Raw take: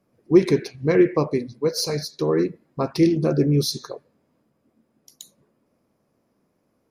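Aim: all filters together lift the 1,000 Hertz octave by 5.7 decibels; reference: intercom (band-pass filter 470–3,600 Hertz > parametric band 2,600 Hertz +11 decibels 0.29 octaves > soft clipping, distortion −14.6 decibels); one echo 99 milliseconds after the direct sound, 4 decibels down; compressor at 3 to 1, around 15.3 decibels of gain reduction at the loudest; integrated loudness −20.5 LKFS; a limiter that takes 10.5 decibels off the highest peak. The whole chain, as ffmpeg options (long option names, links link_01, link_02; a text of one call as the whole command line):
ffmpeg -i in.wav -af "equalizer=frequency=1000:width_type=o:gain=7,acompressor=threshold=-30dB:ratio=3,alimiter=level_in=2dB:limit=-24dB:level=0:latency=1,volume=-2dB,highpass=470,lowpass=3600,equalizer=frequency=2600:width_type=o:width=0.29:gain=11,aecho=1:1:99:0.631,asoftclip=threshold=-34.5dB,volume=21.5dB" out.wav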